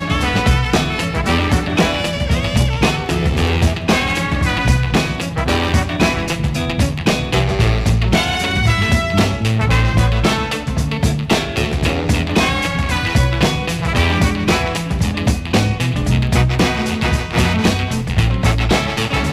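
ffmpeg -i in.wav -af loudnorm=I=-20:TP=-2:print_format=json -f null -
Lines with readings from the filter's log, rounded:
"input_i" : "-16.5",
"input_tp" : "-1.3",
"input_lra" : "1.1",
"input_thresh" : "-26.5",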